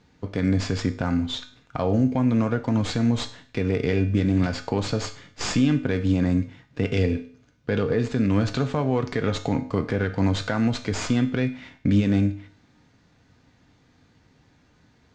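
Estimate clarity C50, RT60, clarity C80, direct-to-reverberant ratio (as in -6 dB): 13.5 dB, 0.50 s, 17.0 dB, 6.5 dB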